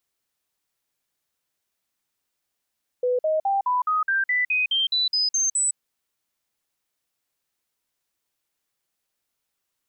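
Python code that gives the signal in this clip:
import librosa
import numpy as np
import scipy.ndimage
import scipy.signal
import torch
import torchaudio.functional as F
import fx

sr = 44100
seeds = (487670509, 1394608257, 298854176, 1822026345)

y = fx.stepped_sweep(sr, from_hz=497.0, direction='up', per_octave=3, tones=13, dwell_s=0.16, gap_s=0.05, level_db=-19.0)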